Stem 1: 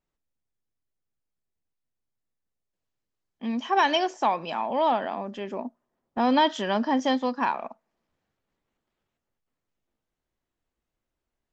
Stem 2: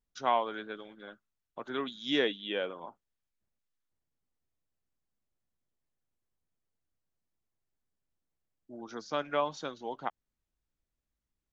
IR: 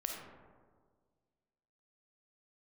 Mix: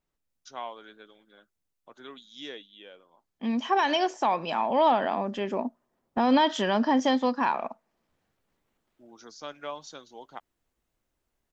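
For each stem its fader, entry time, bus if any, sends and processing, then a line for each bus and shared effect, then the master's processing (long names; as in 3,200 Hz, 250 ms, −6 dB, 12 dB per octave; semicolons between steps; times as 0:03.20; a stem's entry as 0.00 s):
+2.0 dB, 0.00 s, no send, brickwall limiter −16 dBFS, peak gain reduction 6 dB
−9.0 dB, 0.30 s, no send, bass and treble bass −2 dB, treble +12 dB; automatic ducking −10 dB, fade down 1.40 s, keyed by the first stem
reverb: not used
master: speech leveller within 4 dB 2 s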